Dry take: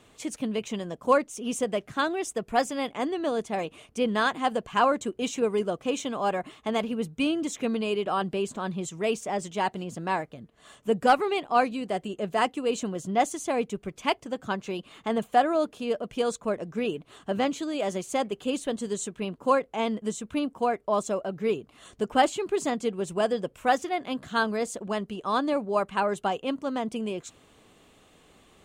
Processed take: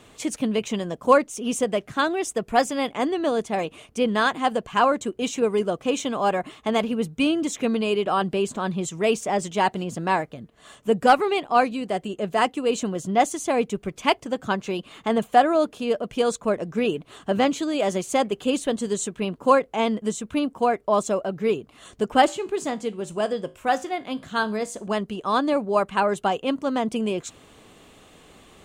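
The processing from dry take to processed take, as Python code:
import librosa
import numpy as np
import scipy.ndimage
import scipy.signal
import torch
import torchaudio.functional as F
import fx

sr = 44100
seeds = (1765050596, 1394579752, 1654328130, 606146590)

y = fx.rider(x, sr, range_db=3, speed_s=2.0)
y = fx.comb_fb(y, sr, f0_hz=53.0, decay_s=0.31, harmonics='all', damping=0.0, mix_pct=50, at=(22.27, 24.86), fade=0.02)
y = y * librosa.db_to_amplitude(4.0)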